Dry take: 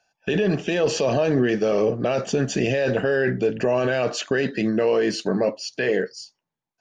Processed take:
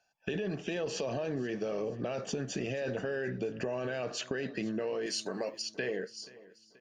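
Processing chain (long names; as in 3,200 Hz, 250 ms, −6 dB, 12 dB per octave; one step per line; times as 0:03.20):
0:05.06–0:05.62: RIAA equalisation recording
downward compressor, threshold −25 dBFS, peak gain reduction 9.5 dB
repeating echo 481 ms, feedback 49%, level −20.5 dB
level −6.5 dB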